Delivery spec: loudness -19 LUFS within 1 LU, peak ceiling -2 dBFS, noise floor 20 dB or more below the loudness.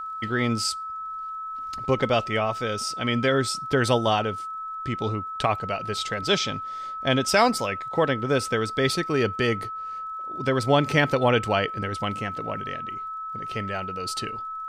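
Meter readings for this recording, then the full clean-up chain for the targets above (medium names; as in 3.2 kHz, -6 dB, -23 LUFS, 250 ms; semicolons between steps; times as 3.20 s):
tick rate 28 per s; steady tone 1.3 kHz; tone level -31 dBFS; loudness -25.5 LUFS; peak level -6.5 dBFS; loudness target -19.0 LUFS
-> de-click; band-stop 1.3 kHz, Q 30; trim +6.5 dB; peak limiter -2 dBFS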